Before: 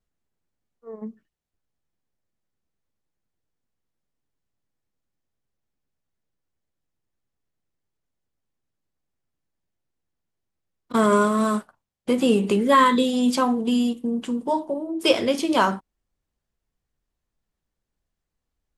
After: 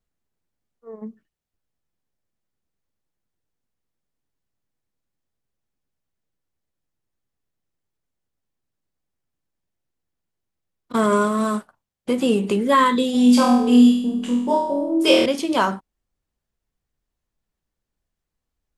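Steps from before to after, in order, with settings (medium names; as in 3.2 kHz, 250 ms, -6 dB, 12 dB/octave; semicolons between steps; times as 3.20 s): 13.12–15.26 s: flutter echo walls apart 4.2 m, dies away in 0.7 s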